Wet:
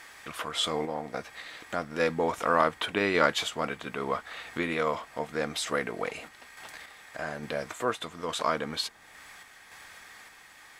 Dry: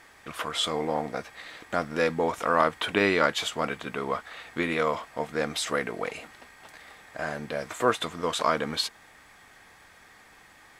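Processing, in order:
sample-and-hold tremolo
one half of a high-frequency compander encoder only

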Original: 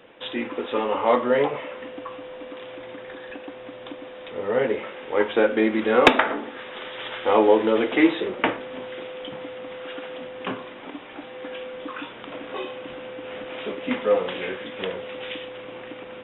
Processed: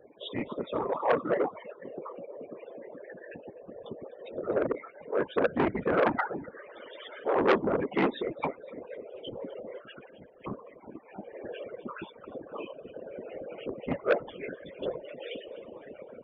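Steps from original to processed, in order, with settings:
spectral peaks only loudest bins 16
random phases in short frames
0:01.12–0:03.05: high-pass filter 140 Hz 12 dB per octave
0:09.79–0:10.44: parametric band 480 Hz −7.5 dB → −14 dB 1.9 octaves
reverb reduction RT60 0.65 s
shaped tremolo saw down 0.54 Hz, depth 35%
delay with a high-pass on its return 253 ms, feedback 40%, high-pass 2,000 Hz, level −17 dB
saturating transformer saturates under 1,500 Hz
level −2 dB

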